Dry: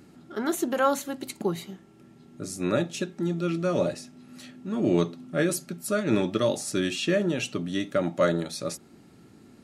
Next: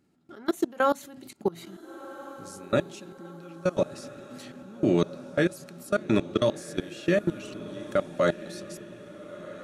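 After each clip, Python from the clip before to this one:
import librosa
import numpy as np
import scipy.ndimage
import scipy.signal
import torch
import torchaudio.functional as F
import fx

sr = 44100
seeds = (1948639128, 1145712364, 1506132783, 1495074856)

y = fx.level_steps(x, sr, step_db=24)
y = fx.echo_diffused(y, sr, ms=1409, feedback_pct=51, wet_db=-15.0)
y = y * 10.0 ** (3.0 / 20.0)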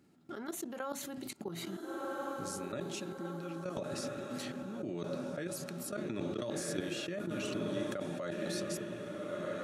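y = fx.over_compress(x, sr, threshold_db=-31.0, ratio=-1.0)
y = scipy.signal.sosfilt(scipy.signal.butter(2, 73.0, 'highpass', fs=sr, output='sos'), y)
y = y * 10.0 ** (-3.5 / 20.0)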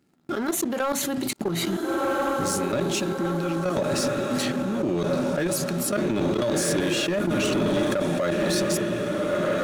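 y = fx.leveller(x, sr, passes=3)
y = y * 10.0 ** (5.0 / 20.0)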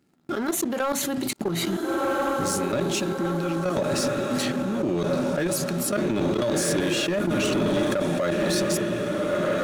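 y = x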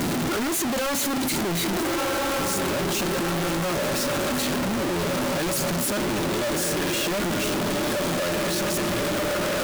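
y = np.sign(x) * np.sqrt(np.mean(np.square(x)))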